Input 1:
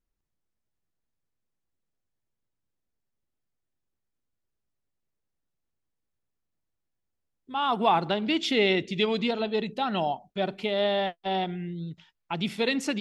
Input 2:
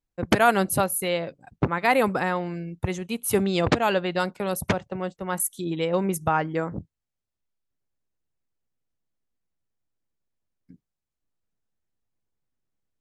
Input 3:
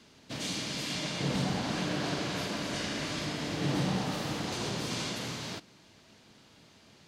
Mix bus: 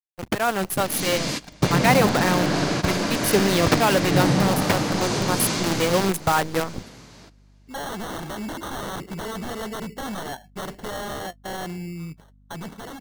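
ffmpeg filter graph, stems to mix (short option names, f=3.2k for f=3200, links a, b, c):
-filter_complex "[0:a]acrusher=samples=18:mix=1:aa=0.000001,aeval=exprs='0.0398*(abs(mod(val(0)/0.0398+3,4)-2)-1)':c=same,aeval=exprs='val(0)+0.002*(sin(2*PI*50*n/s)+sin(2*PI*2*50*n/s)/2+sin(2*PI*3*50*n/s)/3+sin(2*PI*4*50*n/s)/4+sin(2*PI*5*50*n/s)/5)':c=same,adelay=200,volume=-6.5dB[a];[1:a]acrusher=bits=5:dc=4:mix=0:aa=0.000001,volume=-5.5dB,asplit=2[b][c];[2:a]equalizer=f=3.2k:t=o:w=0.77:g=-5.5,dynaudnorm=f=130:g=7:m=10dB,adelay=500,volume=-7dB,asplit=2[d][e];[e]volume=-18.5dB[f];[c]apad=whole_len=334229[g];[d][g]sidechaingate=range=-24dB:threshold=-50dB:ratio=16:detection=peak[h];[f]aecho=0:1:1200:1[i];[a][b][h][i]amix=inputs=4:normalize=0,dynaudnorm=f=120:g=13:m=8dB"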